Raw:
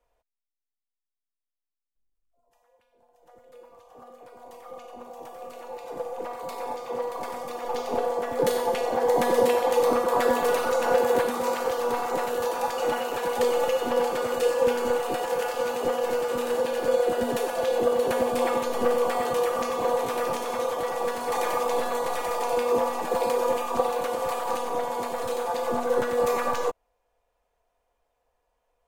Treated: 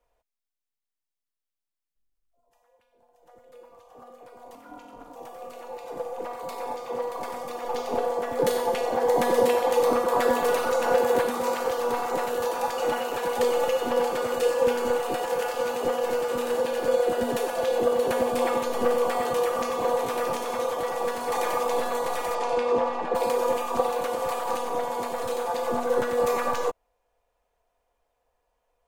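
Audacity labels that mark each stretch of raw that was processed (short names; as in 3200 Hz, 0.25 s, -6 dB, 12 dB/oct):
4.550000	5.160000	ring modulator 220 Hz
22.340000	23.140000	LPF 7200 Hz -> 2800 Hz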